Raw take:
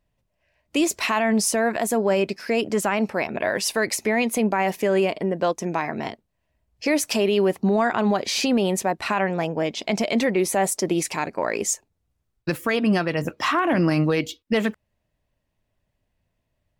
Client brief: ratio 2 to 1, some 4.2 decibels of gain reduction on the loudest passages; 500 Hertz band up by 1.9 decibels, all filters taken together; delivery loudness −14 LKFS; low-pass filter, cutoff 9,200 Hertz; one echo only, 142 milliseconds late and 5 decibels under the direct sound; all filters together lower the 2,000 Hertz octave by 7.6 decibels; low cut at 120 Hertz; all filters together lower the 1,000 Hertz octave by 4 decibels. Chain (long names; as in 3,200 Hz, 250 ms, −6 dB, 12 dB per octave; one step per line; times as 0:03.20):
high-pass filter 120 Hz
low-pass filter 9,200 Hz
parametric band 500 Hz +4.5 dB
parametric band 1,000 Hz −6.5 dB
parametric band 2,000 Hz −8 dB
downward compressor 2 to 1, threshold −23 dBFS
single-tap delay 142 ms −5 dB
level +11 dB